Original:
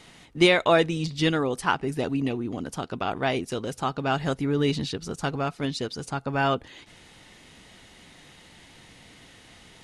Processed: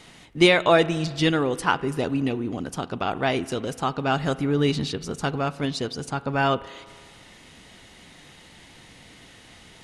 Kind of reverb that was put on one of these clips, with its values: spring tank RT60 1.9 s, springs 34 ms, chirp 80 ms, DRR 16.5 dB; trim +2 dB

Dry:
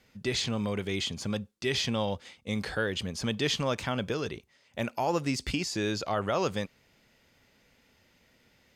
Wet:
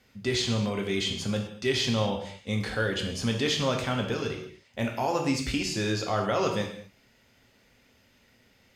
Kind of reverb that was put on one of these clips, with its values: gated-style reverb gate 270 ms falling, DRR 1.5 dB

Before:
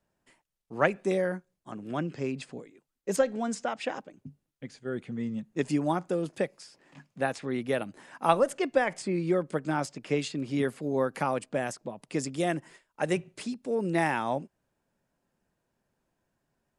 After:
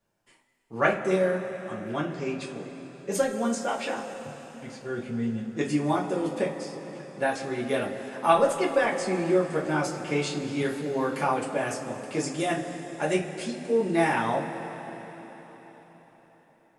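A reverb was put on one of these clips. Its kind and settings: two-slope reverb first 0.22 s, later 4.7 s, from -20 dB, DRR -5 dB; trim -2.5 dB

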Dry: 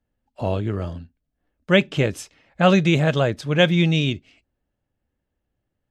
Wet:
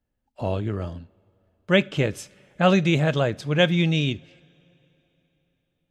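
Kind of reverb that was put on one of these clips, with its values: two-slope reverb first 0.4 s, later 3.6 s, from -18 dB, DRR 19.5 dB; trim -2.5 dB

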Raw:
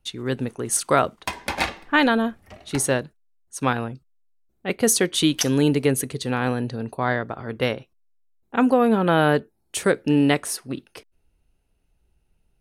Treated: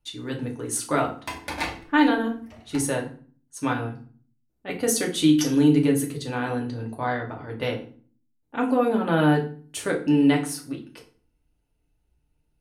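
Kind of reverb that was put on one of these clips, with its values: FDN reverb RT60 0.42 s, low-frequency decay 1.6×, high-frequency decay 0.8×, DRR -0.5 dB; trim -7.5 dB

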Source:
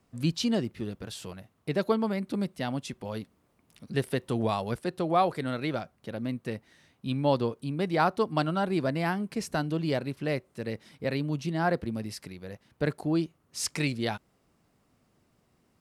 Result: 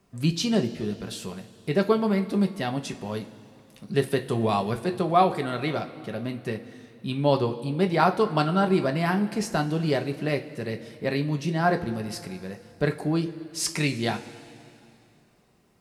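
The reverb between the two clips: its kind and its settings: two-slope reverb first 0.23 s, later 2.7 s, from -18 dB, DRR 4 dB; trim +3 dB

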